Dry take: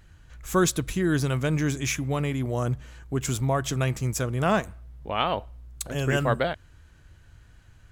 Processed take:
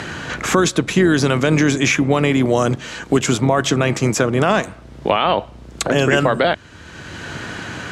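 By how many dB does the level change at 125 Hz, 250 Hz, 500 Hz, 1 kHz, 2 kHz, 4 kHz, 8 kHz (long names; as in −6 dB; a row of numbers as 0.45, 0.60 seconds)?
+5.5, +11.0, +11.0, +9.5, +12.0, +11.5, +7.5 decibels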